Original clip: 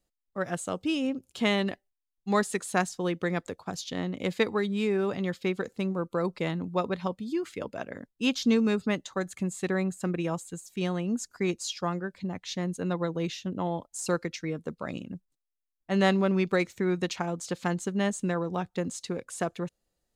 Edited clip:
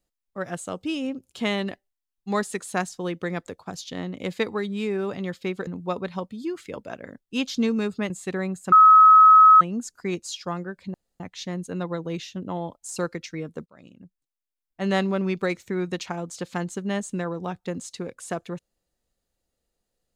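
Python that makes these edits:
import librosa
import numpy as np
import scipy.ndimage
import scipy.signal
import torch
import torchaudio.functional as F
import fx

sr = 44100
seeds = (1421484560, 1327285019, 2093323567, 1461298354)

y = fx.edit(x, sr, fx.cut(start_s=5.67, length_s=0.88),
    fx.cut(start_s=8.98, length_s=0.48),
    fx.bleep(start_s=10.08, length_s=0.89, hz=1280.0, db=-8.5),
    fx.insert_room_tone(at_s=12.3, length_s=0.26),
    fx.fade_in_from(start_s=14.76, length_s=1.17, floor_db=-23.0), tone=tone)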